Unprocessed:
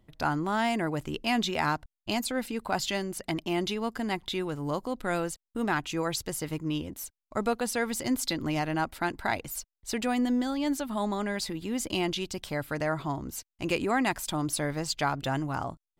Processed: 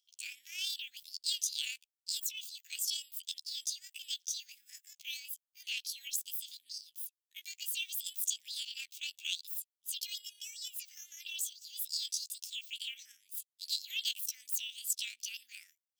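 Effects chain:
pitch shift by two crossfaded delay taps +9 semitones
elliptic high-pass filter 2,900 Hz, stop band 60 dB

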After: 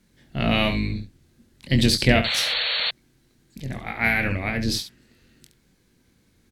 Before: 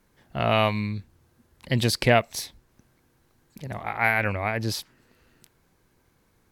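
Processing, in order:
sub-octave generator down 2 octaves, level −1 dB
ambience of single reflections 22 ms −7.5 dB, 70 ms −10 dB
sound drawn into the spectrogram noise, 0:02.24–0:02.91, 460–4,500 Hz −27 dBFS
octave-band graphic EQ 125/250/1,000/2,000/4,000/8,000 Hz +4/+8/−6/+4/+7/+5 dB
level −3 dB

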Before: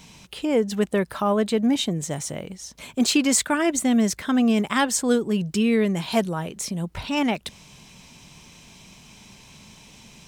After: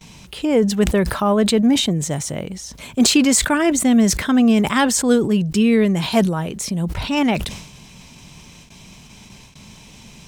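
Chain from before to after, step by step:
noise gate with hold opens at −38 dBFS
low-shelf EQ 190 Hz +5 dB
level that may fall only so fast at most 68 dB per second
level +3.5 dB

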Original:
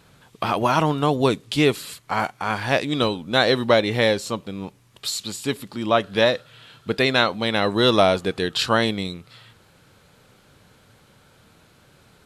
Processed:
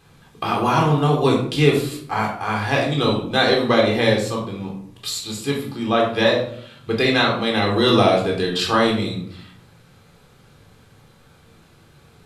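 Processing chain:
rectangular room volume 830 cubic metres, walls furnished, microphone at 3.8 metres
level −3.5 dB

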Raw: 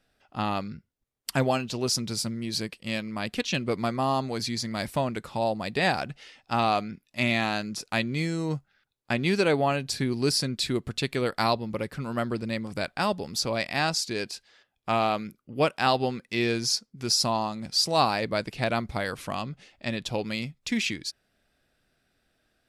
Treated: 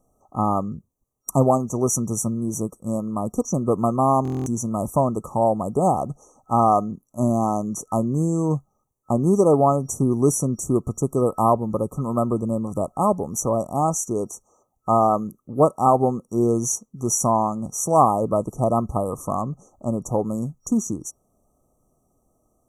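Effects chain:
brick-wall band-stop 1,300–5,700 Hz
buffer that repeats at 0:04.23, samples 1,024, times 9
level +7.5 dB

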